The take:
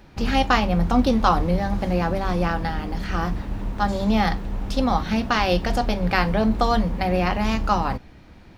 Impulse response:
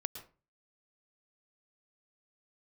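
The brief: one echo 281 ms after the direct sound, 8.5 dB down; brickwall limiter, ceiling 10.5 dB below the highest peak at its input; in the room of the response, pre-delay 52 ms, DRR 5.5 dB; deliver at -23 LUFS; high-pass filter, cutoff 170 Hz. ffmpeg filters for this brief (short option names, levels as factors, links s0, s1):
-filter_complex "[0:a]highpass=170,alimiter=limit=0.2:level=0:latency=1,aecho=1:1:281:0.376,asplit=2[s0][s1];[1:a]atrim=start_sample=2205,adelay=52[s2];[s1][s2]afir=irnorm=-1:irlink=0,volume=0.562[s3];[s0][s3]amix=inputs=2:normalize=0,volume=1.19"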